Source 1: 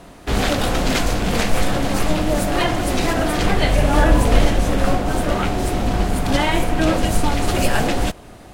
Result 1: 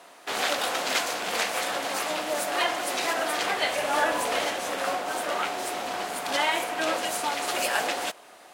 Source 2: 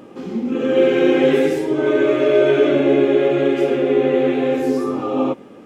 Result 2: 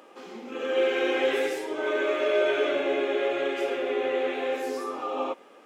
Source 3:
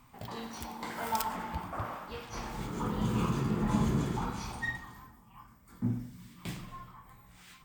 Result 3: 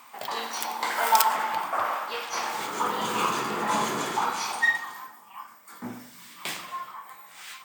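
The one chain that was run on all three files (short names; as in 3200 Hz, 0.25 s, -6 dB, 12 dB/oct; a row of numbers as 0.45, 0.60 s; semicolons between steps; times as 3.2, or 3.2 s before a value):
HPF 650 Hz 12 dB/oct; match loudness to -27 LUFS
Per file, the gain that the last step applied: -3.0, -3.5, +13.0 dB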